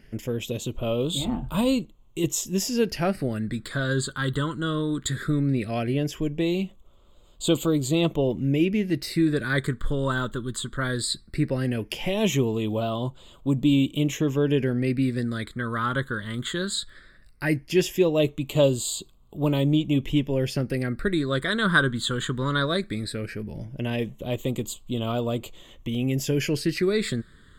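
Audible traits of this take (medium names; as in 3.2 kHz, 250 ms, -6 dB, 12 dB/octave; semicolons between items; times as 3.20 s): phasing stages 8, 0.17 Hz, lowest notch 730–1700 Hz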